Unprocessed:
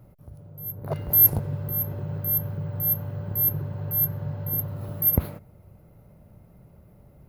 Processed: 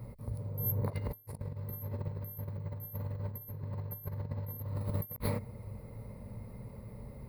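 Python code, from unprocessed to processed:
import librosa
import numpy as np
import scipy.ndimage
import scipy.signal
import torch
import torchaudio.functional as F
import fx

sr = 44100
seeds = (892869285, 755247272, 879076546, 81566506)

y = fx.ripple_eq(x, sr, per_octave=0.94, db=10)
y = fx.over_compress(y, sr, threshold_db=-34.0, ratio=-0.5)
y = y * 10.0 ** (-2.5 / 20.0)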